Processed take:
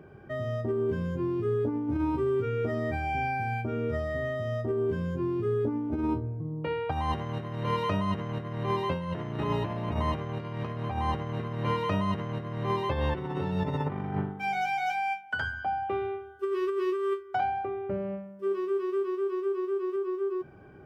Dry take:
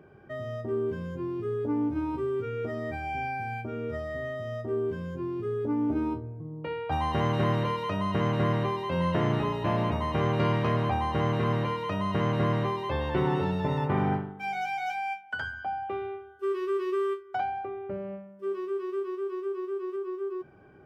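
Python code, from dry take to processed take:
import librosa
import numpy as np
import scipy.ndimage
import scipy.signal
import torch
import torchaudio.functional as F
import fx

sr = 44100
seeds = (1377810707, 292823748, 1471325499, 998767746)

y = fx.low_shelf(x, sr, hz=180.0, db=4.5)
y = fx.over_compress(y, sr, threshold_db=-28.0, ratio=-0.5)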